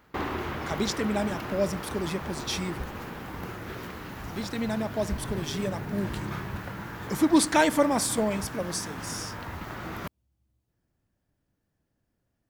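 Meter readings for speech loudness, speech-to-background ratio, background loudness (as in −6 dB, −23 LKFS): −28.5 LKFS, 8.0 dB, −36.5 LKFS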